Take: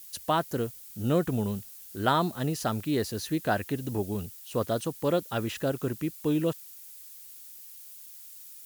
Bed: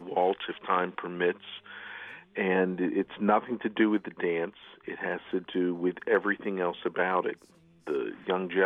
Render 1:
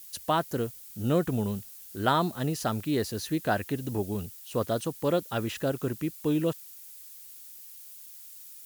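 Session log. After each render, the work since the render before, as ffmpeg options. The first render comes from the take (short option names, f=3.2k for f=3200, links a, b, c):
-af anull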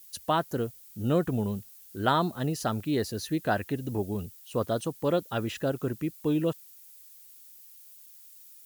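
-af "afftdn=nr=6:nf=-47"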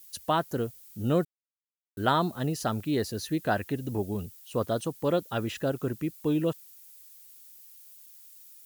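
-filter_complex "[0:a]asplit=3[a][b][c];[a]atrim=end=1.25,asetpts=PTS-STARTPTS,afade=t=out:st=1.246:d=0.004:c=hsin[d];[b]atrim=start=1.25:end=1.97,asetpts=PTS-STARTPTS,volume=0[e];[c]atrim=start=1.97,asetpts=PTS-STARTPTS,afade=t=in:d=0.004:c=hsin[f];[d][e][f]concat=n=3:v=0:a=1"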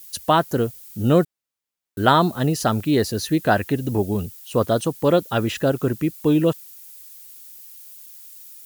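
-af "volume=9dB"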